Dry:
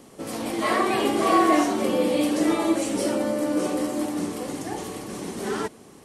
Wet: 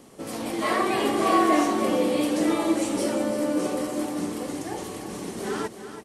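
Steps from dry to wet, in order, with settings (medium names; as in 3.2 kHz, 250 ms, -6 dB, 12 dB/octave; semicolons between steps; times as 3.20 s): feedback delay 334 ms, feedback 34%, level -10.5 dB; trim -1.5 dB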